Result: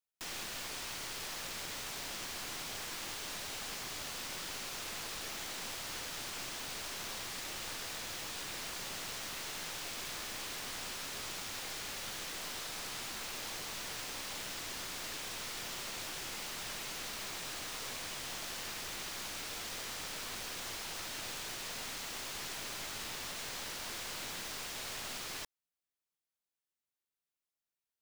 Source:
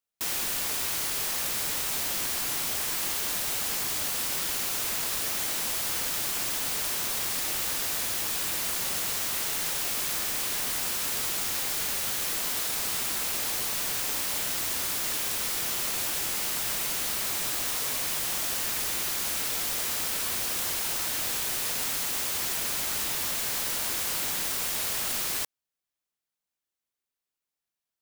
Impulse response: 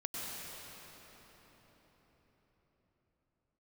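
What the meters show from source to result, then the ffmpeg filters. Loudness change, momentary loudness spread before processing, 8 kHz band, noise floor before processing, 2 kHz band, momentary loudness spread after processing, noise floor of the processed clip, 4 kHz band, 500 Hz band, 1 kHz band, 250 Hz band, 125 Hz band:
−13.0 dB, 0 LU, −13.0 dB, below −85 dBFS, −8.0 dB, 0 LU, below −85 dBFS, −8.5 dB, −8.0 dB, −8.0 dB, −8.0 dB, −8.0 dB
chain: -filter_complex "[0:a]acrossover=split=7000[link_01][link_02];[link_02]acompressor=threshold=-42dB:ratio=4:attack=1:release=60[link_03];[link_01][link_03]amix=inputs=2:normalize=0,aeval=exprs='clip(val(0),-1,0.0141)':channel_layout=same,volume=-6dB"

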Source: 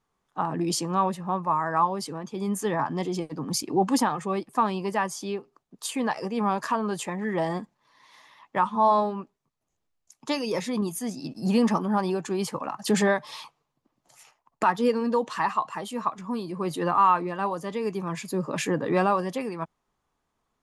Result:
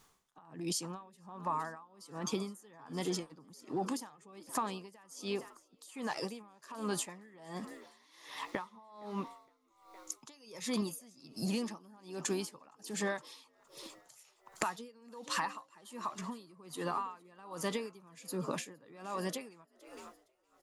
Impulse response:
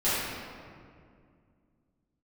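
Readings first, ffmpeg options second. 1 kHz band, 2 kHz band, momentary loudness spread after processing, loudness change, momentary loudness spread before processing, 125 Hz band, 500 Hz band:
−16.0 dB, −10.5 dB, 17 LU, −13.0 dB, 10 LU, −12.5 dB, −14.0 dB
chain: -filter_complex "[0:a]highshelf=frequency=2900:gain=12,alimiter=limit=-21dB:level=0:latency=1:release=478,acompressor=threshold=-41dB:ratio=6,asplit=7[link_01][link_02][link_03][link_04][link_05][link_06][link_07];[link_02]adelay=464,afreqshift=58,volume=-17dB[link_08];[link_03]adelay=928,afreqshift=116,volume=-21.2dB[link_09];[link_04]adelay=1392,afreqshift=174,volume=-25.3dB[link_10];[link_05]adelay=1856,afreqshift=232,volume=-29.5dB[link_11];[link_06]adelay=2320,afreqshift=290,volume=-33.6dB[link_12];[link_07]adelay=2784,afreqshift=348,volume=-37.8dB[link_13];[link_01][link_08][link_09][link_10][link_11][link_12][link_13]amix=inputs=7:normalize=0,aeval=exprs='val(0)*pow(10,-25*(0.5-0.5*cos(2*PI*1.3*n/s))/20)':channel_layout=same,volume=9.5dB"

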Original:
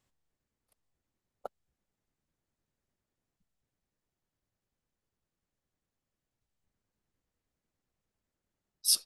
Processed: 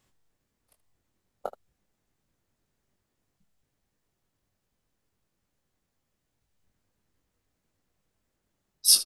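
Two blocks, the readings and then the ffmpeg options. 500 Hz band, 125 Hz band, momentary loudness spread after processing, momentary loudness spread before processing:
+8.0 dB, +8.0 dB, 20 LU, 20 LU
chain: -af "aecho=1:1:21|31|77:0.447|0.141|0.158,acontrast=79"

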